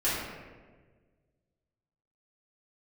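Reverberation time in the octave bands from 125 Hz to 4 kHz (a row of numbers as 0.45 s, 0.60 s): 2.1 s, 1.8 s, 1.7 s, 1.2 s, 1.2 s, 0.85 s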